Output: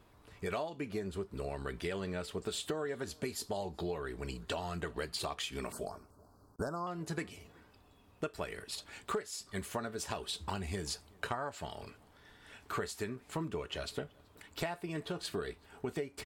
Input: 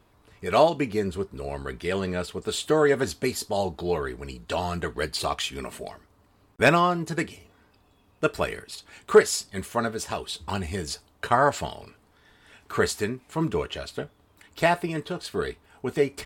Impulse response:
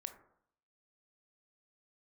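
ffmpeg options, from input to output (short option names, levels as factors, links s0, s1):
-filter_complex "[0:a]acompressor=threshold=0.0251:ratio=12,asettb=1/sr,asplit=3[s0][s1][s2];[s0]atrim=end=5.724[s3];[s1]atrim=start=5.72:end=6.87,asetpts=PTS-STARTPTS,afade=t=in:d=0.004:c=qsin,afade=t=out:st=1.146:d=0.004:c=qsin,asuperstop=centerf=2600:order=12:qfactor=0.89[s4];[s2]atrim=start=6.866[s5];[s3][s4]acrossfade=d=0.004:c1=hsin:c2=qsin[s6];[s6][s5]acrossfade=d=0.004:c1=qsin:c2=hsin,asplit=2[s7][s8];[s8]adelay=379,volume=0.0501,highshelf=f=4000:g=-8.53[s9];[s7][s9]amix=inputs=2:normalize=0,volume=0.794"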